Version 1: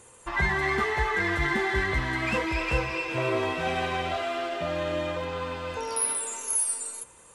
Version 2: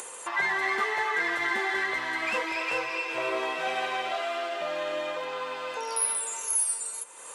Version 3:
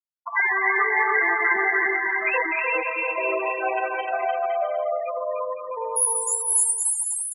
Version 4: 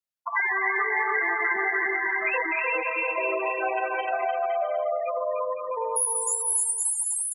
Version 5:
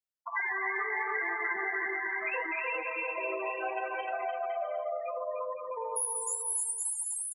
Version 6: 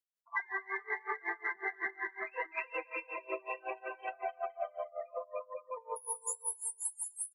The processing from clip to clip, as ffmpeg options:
ffmpeg -i in.wav -af "highpass=500,acompressor=mode=upward:threshold=-30dB:ratio=2.5" out.wav
ffmpeg -i in.wav -af "afftfilt=real='re*gte(hypot(re,im),0.1)':imag='im*gte(hypot(re,im),0.1)':win_size=1024:overlap=0.75,aecho=1:1:300|510|657|759.9|831.9:0.631|0.398|0.251|0.158|0.1,volume=6dB" out.wav
ffmpeg -i in.wav -af "acompressor=threshold=-26dB:ratio=2.5,volume=1.5dB" out.wav
ffmpeg -i in.wav -filter_complex "[0:a]asplit=2[link_01][link_02];[link_02]adelay=65,lowpass=frequency=2000:poles=1,volume=-22dB,asplit=2[link_03][link_04];[link_04]adelay=65,lowpass=frequency=2000:poles=1,volume=0.5,asplit=2[link_05][link_06];[link_06]adelay=65,lowpass=frequency=2000:poles=1,volume=0.5[link_07];[link_01][link_03][link_05][link_07]amix=inputs=4:normalize=0,flanger=delay=4.6:depth=6.4:regen=-78:speed=0.72:shape=triangular,volume=-3dB" out.wav
ffmpeg -i in.wav -af "aeval=exprs='0.0944*(cos(1*acos(clip(val(0)/0.0944,-1,1)))-cos(1*PI/2))+0.000596*(cos(4*acos(clip(val(0)/0.0944,-1,1)))-cos(4*PI/2))+0.000531*(cos(5*acos(clip(val(0)/0.0944,-1,1)))-cos(5*PI/2))':channel_layout=same,aeval=exprs='val(0)*pow(10,-27*(0.5-0.5*cos(2*PI*5.4*n/s))/20)':channel_layout=same" out.wav

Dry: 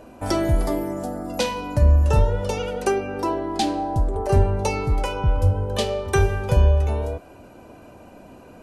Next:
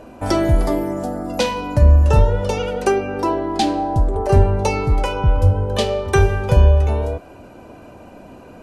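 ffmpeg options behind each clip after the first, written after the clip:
ffmpeg -i in.wav -af "highshelf=frequency=7700:gain=-6.5,volume=4.5dB" out.wav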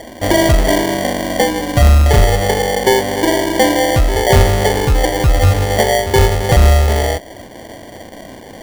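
ffmpeg -i in.wav -af "lowpass=frequency=780:width_type=q:width=1.7,acrusher=samples=34:mix=1:aa=0.000001,acontrast=56,volume=-1.5dB" out.wav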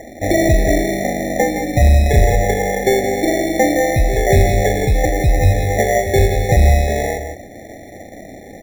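ffmpeg -i in.wav -af "aecho=1:1:169:0.376,afftfilt=real='re*eq(mod(floor(b*sr/1024/860),2),0)':imag='im*eq(mod(floor(b*sr/1024/860),2),0)':win_size=1024:overlap=0.75,volume=-2dB" out.wav

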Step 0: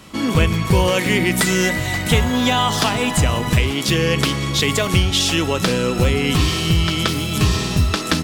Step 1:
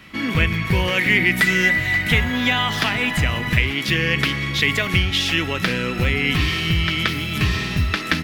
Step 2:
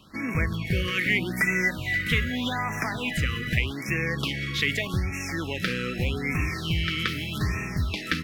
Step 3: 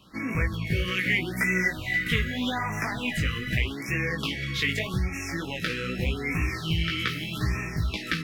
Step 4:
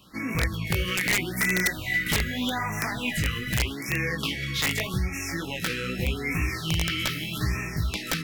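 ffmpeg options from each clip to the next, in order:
ffmpeg -i in.wav -af "equalizer=frequency=500:width_type=o:width=1:gain=-4,equalizer=frequency=1000:width_type=o:width=1:gain=-4,equalizer=frequency=2000:width_type=o:width=1:gain=11,equalizer=frequency=8000:width_type=o:width=1:gain=-10,volume=-3.5dB" out.wav
ffmpeg -i in.wav -af "afftfilt=real='re*(1-between(b*sr/1024,730*pow(3900/730,0.5+0.5*sin(2*PI*0.82*pts/sr))/1.41,730*pow(3900/730,0.5+0.5*sin(2*PI*0.82*pts/sr))*1.41))':imag='im*(1-between(b*sr/1024,730*pow(3900/730,0.5+0.5*sin(2*PI*0.82*pts/sr))/1.41,730*pow(3900/730,0.5+0.5*sin(2*PI*0.82*pts/sr))*1.41))':win_size=1024:overlap=0.75,volume=-6.5dB" out.wav
ffmpeg -i in.wav -af "flanger=delay=15.5:depth=3.5:speed=2,volume=2dB" out.wav
ffmpeg -i in.wav -af "crystalizer=i=1:c=0,aeval=exprs='(mod(5.96*val(0)+1,2)-1)/5.96':channel_layout=same" out.wav

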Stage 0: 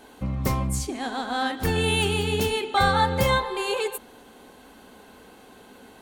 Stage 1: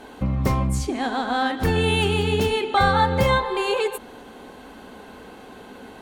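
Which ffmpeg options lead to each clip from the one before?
ffmpeg -i in.wav -filter_complex "[0:a]asplit=2[link_01][link_02];[link_02]acompressor=threshold=-30dB:ratio=6,volume=2dB[link_03];[link_01][link_03]amix=inputs=2:normalize=0,aemphasis=mode=reproduction:type=cd" out.wav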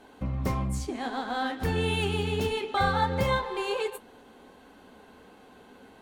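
ffmpeg -i in.wav -filter_complex "[0:a]asplit=2[link_01][link_02];[link_02]aeval=exprs='sgn(val(0))*max(abs(val(0))-0.0224,0)':channel_layout=same,volume=-5dB[link_03];[link_01][link_03]amix=inputs=2:normalize=0,flanger=delay=9.5:depth=3.6:regen=-59:speed=1.5:shape=triangular,volume=-6.5dB" out.wav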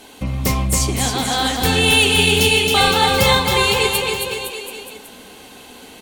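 ffmpeg -i in.wav -filter_complex "[0:a]aexciter=amount=4:drive=3.9:freq=2200,asplit=2[link_01][link_02];[link_02]aecho=0:1:270|513|731.7|928.5|1106:0.631|0.398|0.251|0.158|0.1[link_03];[link_01][link_03]amix=inputs=2:normalize=0,volume=8dB" out.wav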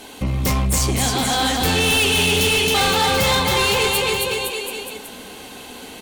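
ffmpeg -i in.wav -af "asoftclip=type=tanh:threshold=-18dB,volume=3.5dB" out.wav

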